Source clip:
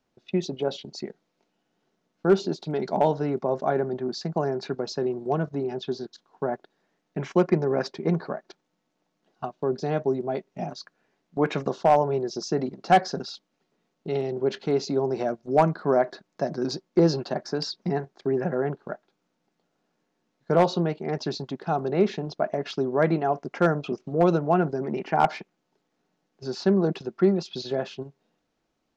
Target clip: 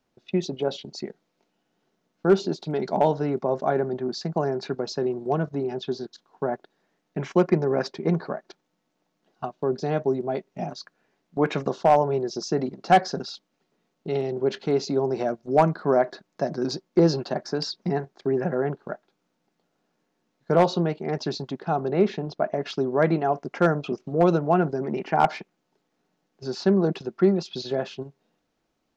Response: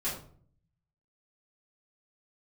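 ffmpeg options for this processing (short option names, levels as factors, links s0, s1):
-filter_complex "[0:a]asettb=1/sr,asplit=3[s0][s1][s2];[s0]atrim=end=21.604[s3];[s1]atrim=start=21.6:end=22.57,asetpts=PTS-STARTPTS,afade=t=in:d=0.004:c=qsin,afade=t=out:st=0.966:d=0.004:c=qsin,highshelf=f=5500:g=-7.5[s4];[s2]atrim=start=22.566[s5];[s3][s4]acrossfade=d=0.004:c1=hsin:c2=qsin[s6];[s6][s5]acrossfade=d=0.004:c1=qsin:c2=hsin,volume=1.12"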